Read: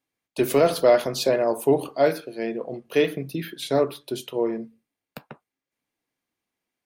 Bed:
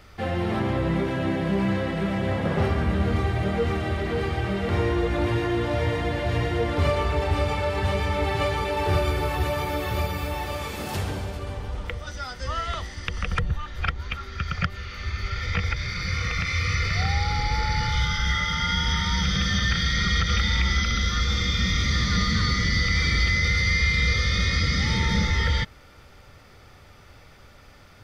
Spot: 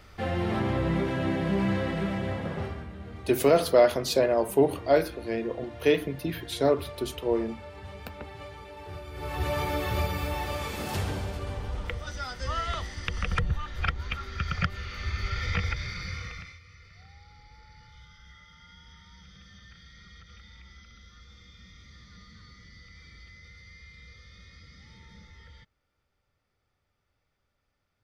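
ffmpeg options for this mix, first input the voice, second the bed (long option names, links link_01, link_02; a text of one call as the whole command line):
ffmpeg -i stem1.wav -i stem2.wav -filter_complex "[0:a]adelay=2900,volume=-2dB[link_01];[1:a]volume=14dB,afade=type=out:start_time=1.92:duration=0.98:silence=0.158489,afade=type=in:start_time=9.11:duration=0.46:silence=0.149624,afade=type=out:start_time=15.47:duration=1.12:silence=0.0473151[link_02];[link_01][link_02]amix=inputs=2:normalize=0" out.wav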